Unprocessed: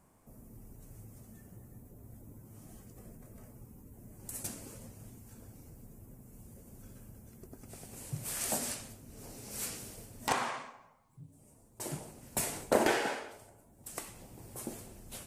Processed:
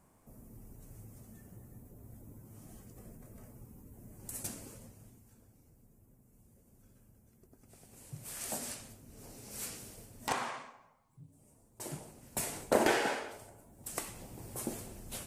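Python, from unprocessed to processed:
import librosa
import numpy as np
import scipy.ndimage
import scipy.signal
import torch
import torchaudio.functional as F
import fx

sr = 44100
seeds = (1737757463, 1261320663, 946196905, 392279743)

y = fx.gain(x, sr, db=fx.line((4.58, -0.5), (5.49, -11.0), (7.47, -11.0), (8.91, -3.0), (12.35, -3.0), (13.34, 3.0)))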